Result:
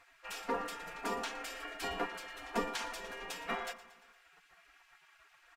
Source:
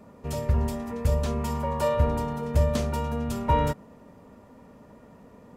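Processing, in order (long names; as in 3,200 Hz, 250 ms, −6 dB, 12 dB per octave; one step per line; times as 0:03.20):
gate on every frequency bin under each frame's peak −25 dB weak
low-pass filter 1,700 Hz 6 dB per octave
comb filter 4.3 ms, depth 69%
in parallel at −2 dB: downward compressor, threshold −57 dBFS, peak gain reduction 21 dB
on the sum: repeating echo 115 ms, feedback 58%, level −16.5 dB
on a send at −14 dB: convolution reverb RT60 0.65 s, pre-delay 3 ms
on the sum: level +4.5 dB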